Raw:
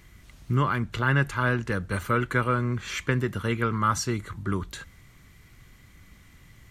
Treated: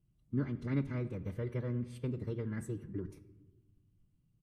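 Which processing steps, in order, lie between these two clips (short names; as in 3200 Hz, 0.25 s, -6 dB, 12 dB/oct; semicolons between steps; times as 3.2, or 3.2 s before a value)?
speakerphone echo 0.14 s, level -19 dB; spectral noise reduction 12 dB; EQ curve 120 Hz 0 dB, 1800 Hz -20 dB, 3900 Hz -19 dB, 5800 Hz -12 dB; formant shift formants +6 st; treble ducked by the level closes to 850 Hz, closed at -13 dBFS; shoebox room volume 2900 m³, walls mixed, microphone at 0.5 m; time stretch by phase-locked vocoder 0.66×; gain -7.5 dB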